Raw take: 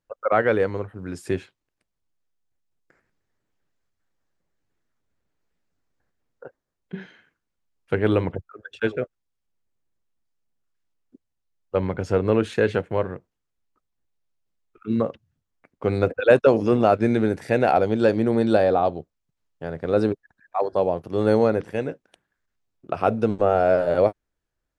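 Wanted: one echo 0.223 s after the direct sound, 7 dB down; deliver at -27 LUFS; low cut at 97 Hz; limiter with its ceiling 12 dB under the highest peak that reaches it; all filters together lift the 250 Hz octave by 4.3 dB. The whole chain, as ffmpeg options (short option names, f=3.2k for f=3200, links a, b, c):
-af "highpass=97,equalizer=f=250:t=o:g=5.5,alimiter=limit=-14dB:level=0:latency=1,aecho=1:1:223:0.447,volume=-1.5dB"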